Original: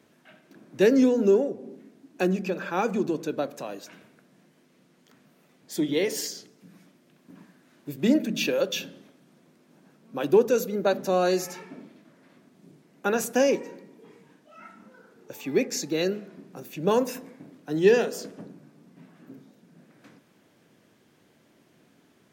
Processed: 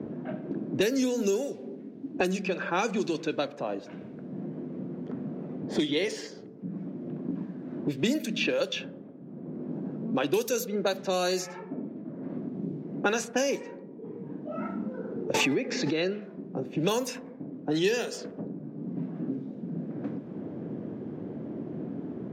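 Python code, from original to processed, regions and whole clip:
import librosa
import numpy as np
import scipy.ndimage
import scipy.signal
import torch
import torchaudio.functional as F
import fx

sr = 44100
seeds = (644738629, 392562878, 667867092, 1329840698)

y = fx.chain(x, sr, fx.env_lowpass_down(base_hz=2800.0, full_db=-23.5),
    fx.pre_swell(db_per_s=26.0), at=(15.34, 16.22))
y = fx.env_lowpass(y, sr, base_hz=380.0, full_db=-18.5)
y = fx.high_shelf(y, sr, hz=2600.0, db=9.5)
y = fx.band_squash(y, sr, depth_pct=100)
y = F.gain(torch.from_numpy(y), -2.5).numpy()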